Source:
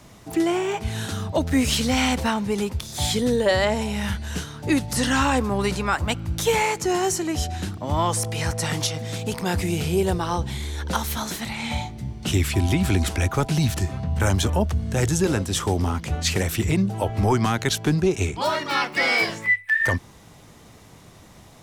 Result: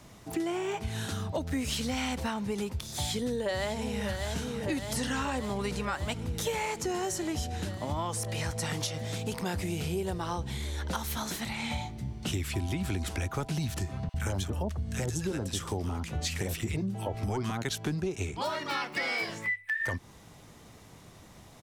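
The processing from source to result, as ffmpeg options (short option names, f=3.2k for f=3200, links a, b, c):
-filter_complex "[0:a]asplit=2[a][b];[b]afade=t=in:st=2.88:d=0.01,afade=t=out:st=4.05:d=0.01,aecho=0:1:600|1200|1800|2400|3000|3600|4200|4800|5400|6000|6600|7200:0.354813|0.283851|0.227081|0.181664|0.145332|0.116265|0.0930122|0.0744098|0.0595278|0.0476222|0.0380978|0.0304782[c];[a][c]amix=inputs=2:normalize=0,asettb=1/sr,asplit=3[d][e][f];[d]atrim=end=14.094[g];[e]atrim=start=14.09:end=17.65,asetpts=PTS-STARTPTS,afade=t=in:d=0.004:c=qsin,afade=t=out:st=3.556:d=0.004:c=qsin,acrossover=split=1200[h][i];[h]adelay=50[j];[j][i]amix=inputs=2:normalize=0,atrim=end_sample=156996[k];[f]atrim=start=17.646[l];[g][k]acrossfade=d=0.004:c1=hsin:c2=qsin[m];[m][l]acrossfade=d=0.004:c1=qsin:c2=hsin,acompressor=threshold=-25dB:ratio=4,volume=-4.5dB"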